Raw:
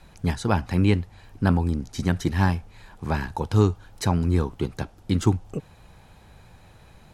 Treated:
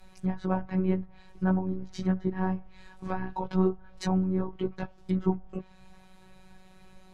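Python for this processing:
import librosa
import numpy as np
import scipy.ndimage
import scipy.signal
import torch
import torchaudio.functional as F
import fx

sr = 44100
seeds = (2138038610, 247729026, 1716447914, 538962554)

y = fx.chorus_voices(x, sr, voices=6, hz=0.56, base_ms=17, depth_ms=1.8, mix_pct=45)
y = fx.robotise(y, sr, hz=187.0)
y = fx.env_lowpass_down(y, sr, base_hz=1100.0, full_db=-26.5)
y = F.gain(torch.from_numpy(y), 1.0).numpy()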